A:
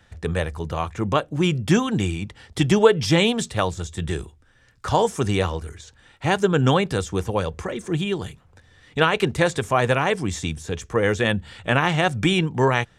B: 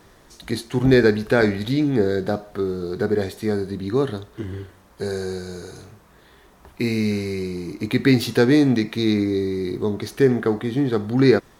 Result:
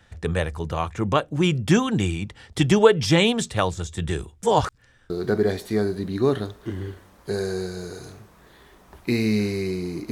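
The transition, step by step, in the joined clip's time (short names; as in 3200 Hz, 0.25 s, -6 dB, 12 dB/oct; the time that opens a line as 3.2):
A
4.43–5.1 reverse
5.1 switch to B from 2.82 s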